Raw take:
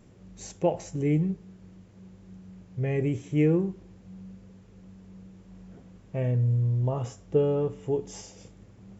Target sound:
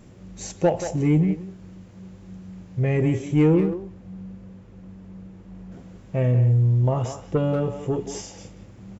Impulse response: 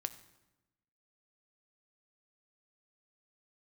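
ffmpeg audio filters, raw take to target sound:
-filter_complex "[0:a]asettb=1/sr,asplit=3[a][b][c];[a]atrim=end=3.544[d];[b]atrim=start=3.54:end=5.72,asetpts=PTS-STARTPTS,afade=t=in:d=0.004:c=qsin,afade=t=out:st=2.176:d=0.004:c=qsin,highshelf=f=3.5k:g=-10.5[e];[c]atrim=start=5.716[f];[d][e]acrossfade=d=0.004:c1=hsin:c2=qsin[g];[g][f]acrossfade=d=0.004:c1=qsin:c2=hsin,asplit=2[h][i];[i]adelay=180,highpass=300,lowpass=3.4k,asoftclip=type=hard:threshold=-21dB,volume=-9dB[j];[h][j]amix=inputs=2:normalize=0,asoftclip=type=tanh:threshold=-16.5dB,bandreject=f=430:w=14,volume=7dB"

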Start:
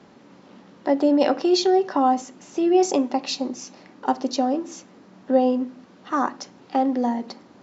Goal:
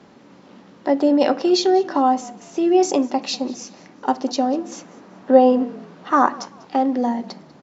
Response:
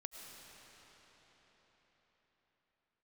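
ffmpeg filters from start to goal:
-filter_complex "[0:a]asettb=1/sr,asplit=3[a][b][c];[a]atrim=end=4.724[d];[b]atrim=start=4.72:end=6.4,asetpts=PTS-STARTPTS,afade=t=in:d=0.004:c=qsin,afade=t=out:st=1.676:d=0.004:c=qsin,equalizer=f=890:w=0.39:g=6[e];[c]atrim=start=6.396[f];[d][e]acrossfade=d=0.004:c1=hsin:c2=qsin[g];[g][f]acrossfade=d=0.004:c1=qsin:c2=hsin,asplit=3[h][i][j];[i]adelay=194,afreqshift=-42,volume=-21.5dB[k];[j]adelay=388,afreqshift=-84,volume=-31.4dB[l];[h][k][l]amix=inputs=3:normalize=0,volume=2dB"

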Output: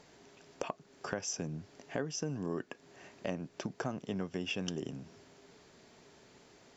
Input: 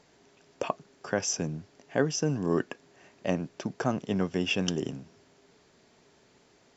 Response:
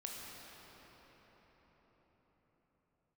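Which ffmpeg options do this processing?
-af "acompressor=threshold=-39dB:ratio=3,volume=2dB"

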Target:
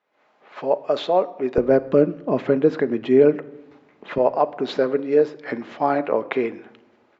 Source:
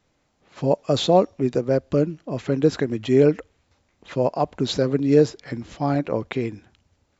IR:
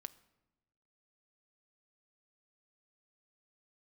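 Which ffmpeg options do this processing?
-filter_complex "[0:a]dynaudnorm=f=110:g=3:m=15dB,asetnsamples=n=441:p=0,asendcmd='1.58 highpass f 240;4.18 highpass f 410',highpass=530,lowpass=2.2k[a];[1:a]atrim=start_sample=2205[b];[a][b]afir=irnorm=-1:irlink=0,volume=3dB"

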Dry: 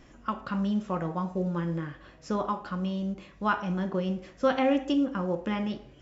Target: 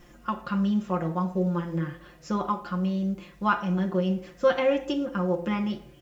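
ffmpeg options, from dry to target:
-af "aecho=1:1:5.7:0.67,bandreject=f=168.9:t=h:w=4,bandreject=f=337.8:t=h:w=4,bandreject=f=506.7:t=h:w=4,bandreject=f=675.6:t=h:w=4,acrusher=bits=10:mix=0:aa=0.000001"

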